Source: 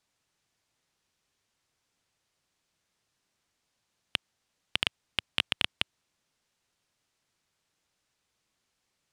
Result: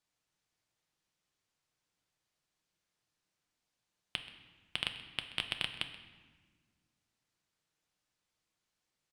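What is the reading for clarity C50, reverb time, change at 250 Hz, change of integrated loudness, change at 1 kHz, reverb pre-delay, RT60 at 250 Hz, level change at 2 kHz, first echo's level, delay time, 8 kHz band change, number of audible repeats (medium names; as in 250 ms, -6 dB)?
9.5 dB, 1.5 s, -6.0 dB, -6.5 dB, -6.5 dB, 6 ms, 2.4 s, -6.5 dB, -18.0 dB, 130 ms, -7.0 dB, 1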